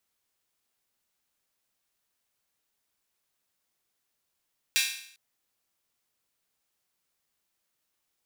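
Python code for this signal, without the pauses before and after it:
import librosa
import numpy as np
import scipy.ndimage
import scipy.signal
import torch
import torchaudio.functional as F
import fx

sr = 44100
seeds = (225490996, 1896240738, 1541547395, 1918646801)

y = fx.drum_hat_open(sr, length_s=0.4, from_hz=2400.0, decay_s=0.63)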